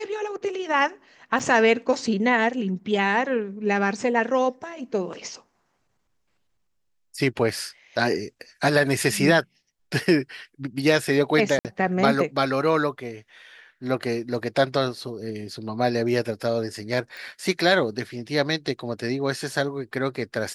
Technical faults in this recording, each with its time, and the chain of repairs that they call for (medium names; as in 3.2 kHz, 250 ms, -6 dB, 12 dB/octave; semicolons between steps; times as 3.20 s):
1.39–1.40 s: dropout 6.7 ms
11.59–11.65 s: dropout 58 ms
17.17 s: pop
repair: de-click; interpolate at 1.39 s, 6.7 ms; interpolate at 11.59 s, 58 ms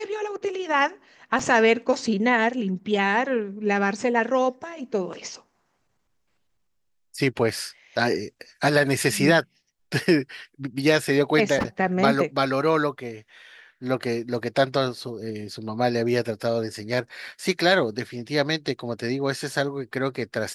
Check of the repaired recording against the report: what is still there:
nothing left